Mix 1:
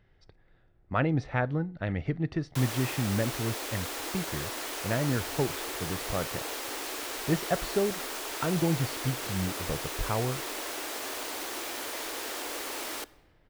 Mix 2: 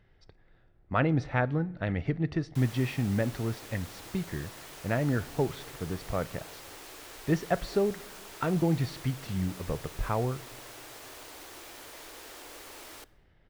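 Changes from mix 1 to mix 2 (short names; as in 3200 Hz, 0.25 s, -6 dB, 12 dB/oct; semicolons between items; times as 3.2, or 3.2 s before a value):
speech: send on; background -10.5 dB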